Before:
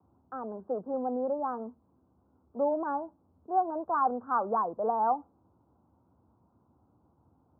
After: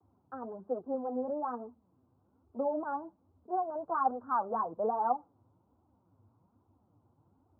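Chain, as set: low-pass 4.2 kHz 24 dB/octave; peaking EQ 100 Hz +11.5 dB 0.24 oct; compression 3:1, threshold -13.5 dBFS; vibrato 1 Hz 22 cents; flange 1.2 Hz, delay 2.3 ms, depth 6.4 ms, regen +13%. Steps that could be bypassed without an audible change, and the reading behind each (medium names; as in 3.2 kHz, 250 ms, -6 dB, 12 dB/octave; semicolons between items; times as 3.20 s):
low-pass 4.2 kHz: input has nothing above 1.6 kHz; compression, threshold -13.5 dBFS: peak at its input -16.5 dBFS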